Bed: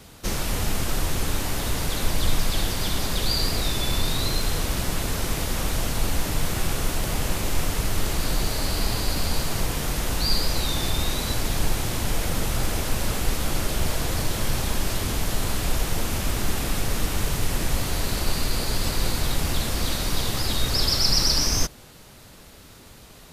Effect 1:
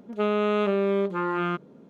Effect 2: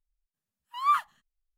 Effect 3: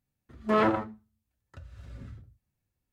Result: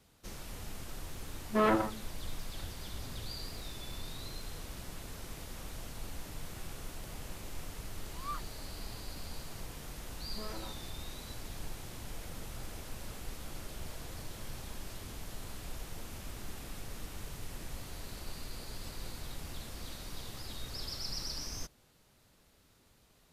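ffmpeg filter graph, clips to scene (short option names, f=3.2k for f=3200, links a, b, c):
-filter_complex "[3:a]asplit=2[a][b];[0:a]volume=-19dB[c];[a]acompressor=mode=upward:threshold=-48dB:ratio=2.5:attack=3.2:release=140:knee=2.83:detection=peak[d];[b]acompressor=threshold=-28dB:ratio=6:attack=3.2:release=140:knee=1:detection=peak[e];[d]atrim=end=2.92,asetpts=PTS-STARTPTS,volume=-3.5dB,afade=t=in:d=0.004:c=hsin,afade=t=out:st=2.916:d=0.004:c=hsin,adelay=1060[f];[2:a]atrim=end=1.57,asetpts=PTS-STARTPTS,volume=-17.5dB,afade=t=in:d=0.004:c=hsin,afade=t=out:st=1.566:d=0.004:c=hsin,adelay=7400[g];[e]atrim=end=2.92,asetpts=PTS-STARTPTS,volume=-14dB,afade=t=in:d=0.004:c=hsin,afade=t=out:st=2.916:d=0.004:c=hsin,adelay=9890[h];[c][f][g][h]amix=inputs=4:normalize=0"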